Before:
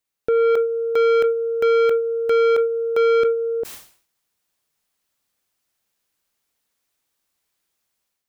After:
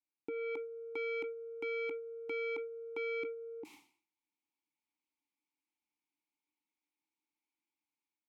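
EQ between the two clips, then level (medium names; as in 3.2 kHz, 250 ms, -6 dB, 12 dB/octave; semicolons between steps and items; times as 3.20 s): vowel filter u; treble shelf 4.4 kHz +11.5 dB; -1.5 dB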